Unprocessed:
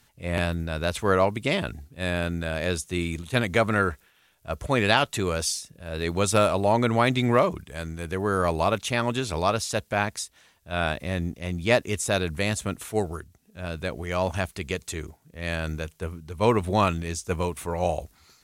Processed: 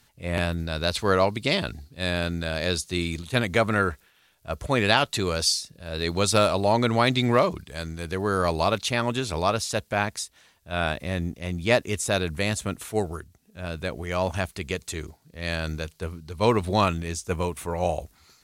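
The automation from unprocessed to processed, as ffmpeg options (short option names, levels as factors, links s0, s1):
-af "asetnsamples=n=441:p=0,asendcmd='0.58 equalizer g 12;3.26 equalizer g 3.5;5.13 equalizer g 10;8.89 equalizer g 2;14.94 equalizer g 8.5;16.85 equalizer g 0.5',equalizer=f=4400:t=o:w=0.51:g=2.5"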